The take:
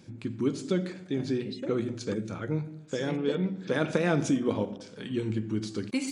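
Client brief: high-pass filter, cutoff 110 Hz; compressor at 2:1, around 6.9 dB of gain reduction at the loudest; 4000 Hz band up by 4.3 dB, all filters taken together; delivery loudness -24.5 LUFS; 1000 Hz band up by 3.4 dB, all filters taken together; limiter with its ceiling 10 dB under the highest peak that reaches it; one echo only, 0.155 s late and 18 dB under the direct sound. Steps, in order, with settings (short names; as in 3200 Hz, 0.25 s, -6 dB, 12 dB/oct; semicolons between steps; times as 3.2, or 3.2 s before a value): HPF 110 Hz; bell 1000 Hz +4.5 dB; bell 4000 Hz +5 dB; compressor 2:1, threshold -33 dBFS; limiter -24.5 dBFS; echo 0.155 s -18 dB; gain +12 dB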